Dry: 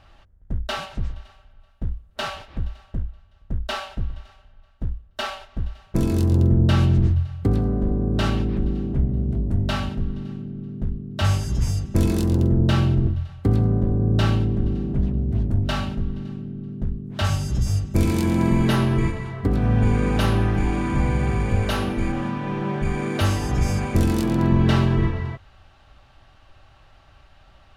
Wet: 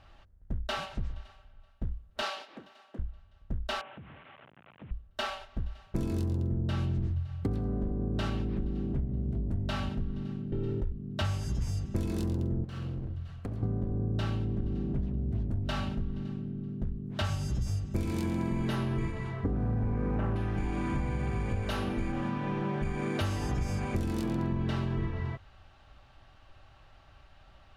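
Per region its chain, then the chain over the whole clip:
0:02.22–0:02.99: high-pass filter 260 Hz 24 dB per octave + dynamic equaliser 4,600 Hz, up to +5 dB, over −51 dBFS, Q 1.3
0:03.81–0:04.91: linear delta modulator 16 kbit/s, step −40 dBFS + high-pass filter 120 Hz 24 dB per octave + downward compressor, threshold −39 dBFS
0:10.52–0:10.92: parametric band 160 Hz −11.5 dB 0.7 octaves + comb filter 2.2 ms, depth 64% + envelope flattener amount 70%
0:12.64–0:13.63: lower of the sound and its delayed copy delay 0.69 ms + parametric band 910 Hz −4 dB 0.27 octaves + downward compressor 5 to 1, threshold −29 dBFS
0:19.44–0:20.36: Gaussian smoothing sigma 4.7 samples + leveller curve on the samples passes 1
whole clip: high-shelf EQ 7,800 Hz −4.5 dB; downward compressor, threshold −23 dBFS; level −4.5 dB

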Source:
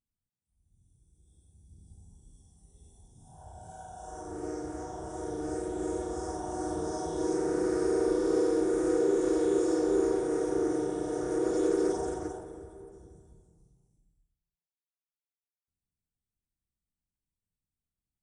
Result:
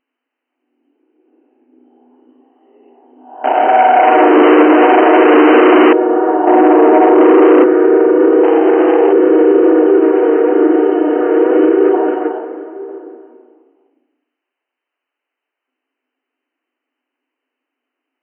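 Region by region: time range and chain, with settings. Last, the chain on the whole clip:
0:03.44–0:05.93: low-pass filter 1,400 Hz 6 dB per octave + leveller curve on the samples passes 5 + hard clipping −26.5 dBFS
0:06.47–0:07.64: Butterworth low-pass 1,100 Hz + leveller curve on the samples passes 3
0:08.43–0:09.13: linear-phase brick-wall high-pass 210 Hz + spectral tilt +1.5 dB per octave + highs frequency-modulated by the lows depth 0.39 ms
0:09.86–0:12.89: high-shelf EQ 4,200 Hz +11.5 dB + flanger 1 Hz, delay 2.3 ms, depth 2.4 ms, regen +74%
whole clip: brick-wall band-pass 240–3,100 Hz; boost into a limiter +25 dB; level −1 dB

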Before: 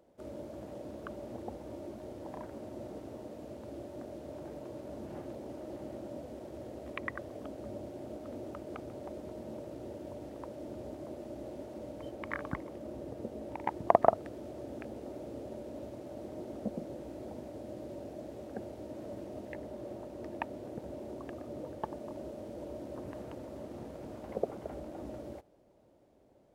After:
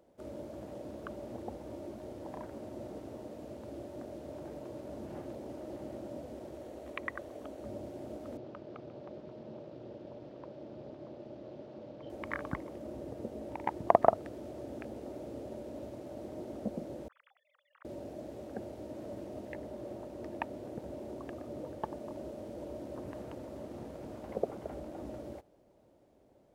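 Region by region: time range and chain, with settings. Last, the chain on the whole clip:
0:06.54–0:07.64: parametric band 130 Hz −7.5 dB 1.7 octaves + notch filter 5,000 Hz, Q 15
0:08.37–0:12.10: amplitude modulation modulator 240 Hz, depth 40% + loudspeaker in its box 120–4,800 Hz, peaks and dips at 140 Hz +6 dB, 280 Hz −3 dB, 830 Hz −5 dB, 2,000 Hz −3 dB
0:17.08–0:17.85: three sine waves on the formant tracks + amplitude modulation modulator 43 Hz, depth 35% + Butterworth high-pass 1,100 Hz
whole clip: no processing

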